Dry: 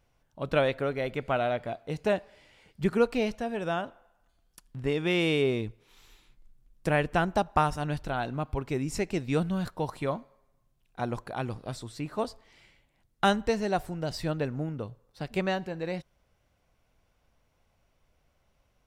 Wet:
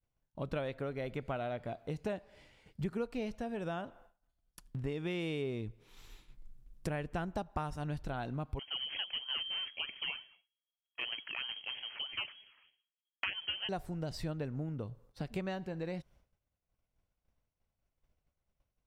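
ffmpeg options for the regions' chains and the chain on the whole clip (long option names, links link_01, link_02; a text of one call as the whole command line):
ffmpeg -i in.wav -filter_complex "[0:a]asettb=1/sr,asplit=3[link_01][link_02][link_03];[link_01]atrim=end=8.594[link_04];[link_02]atrim=start=8.59:end=13.69,asetpts=PTS-STARTPTS,afade=type=in:duration=0.004:curve=qsin,afade=type=out:start_time=5.096:duration=0.004:curve=qsin,bandreject=frequency=50:width_type=h:width=6,bandreject=frequency=100:width_type=h:width=6,bandreject=frequency=150:width_type=h:width=6,bandreject=frequency=200:width_type=h:width=6,bandreject=frequency=250:width_type=h:width=6,acrusher=samples=17:mix=1:aa=0.000001:lfo=1:lforange=10.2:lforate=3.2,lowpass=frequency=2800:width_type=q:width=0.5098,lowpass=frequency=2800:width_type=q:width=0.6013,lowpass=frequency=2800:width_type=q:width=0.9,lowpass=frequency=2800:width_type=q:width=2.563,afreqshift=-3300[link_05];[link_03]atrim=start=13.686[link_06];[link_04][link_05]acrossfade=duration=0.004:curve1=hsin:curve2=qsin[link_07];[link_07][link_06]acrossfade=duration=0.004:curve1=qsin:curve2=hsin,lowshelf=frequency=310:gain=6,agate=range=-33dB:threshold=-52dB:ratio=3:detection=peak,acompressor=threshold=-37dB:ratio=3,volume=-1dB" out.wav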